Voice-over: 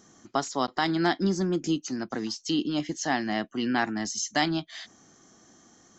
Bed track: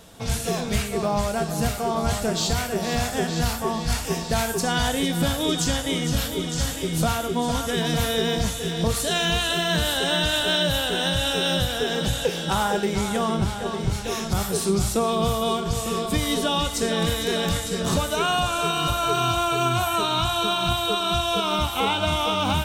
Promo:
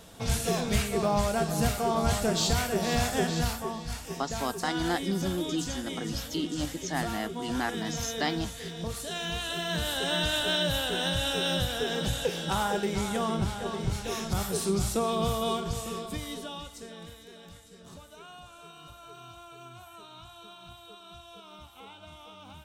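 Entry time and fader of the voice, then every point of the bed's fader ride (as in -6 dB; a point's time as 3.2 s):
3.85 s, -5.0 dB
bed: 3.27 s -2.5 dB
3.91 s -12 dB
9.09 s -12 dB
10.21 s -5.5 dB
15.56 s -5.5 dB
17.32 s -25.5 dB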